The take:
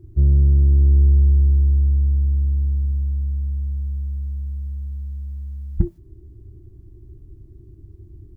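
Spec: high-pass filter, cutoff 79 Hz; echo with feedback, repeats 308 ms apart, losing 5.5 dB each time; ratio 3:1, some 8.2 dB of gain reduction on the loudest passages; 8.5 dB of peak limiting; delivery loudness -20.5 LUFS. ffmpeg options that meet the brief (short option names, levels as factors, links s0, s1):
-af "highpass=79,acompressor=threshold=0.0501:ratio=3,alimiter=limit=0.0668:level=0:latency=1,aecho=1:1:308|616|924|1232|1540|1848|2156:0.531|0.281|0.149|0.079|0.0419|0.0222|0.0118,volume=5.31"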